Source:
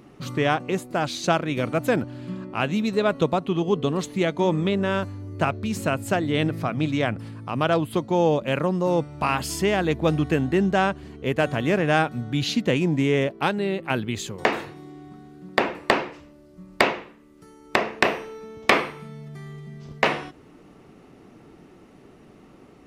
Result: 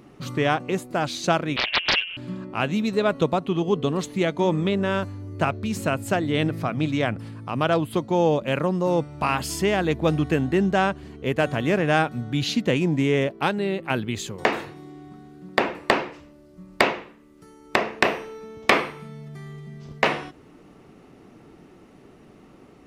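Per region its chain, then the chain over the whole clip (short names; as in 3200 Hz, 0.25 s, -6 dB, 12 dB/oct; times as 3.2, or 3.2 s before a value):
1.56–2.17 comb 6.7 ms, depth 38% + inverted band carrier 3000 Hz + Doppler distortion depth 0.84 ms
whole clip: dry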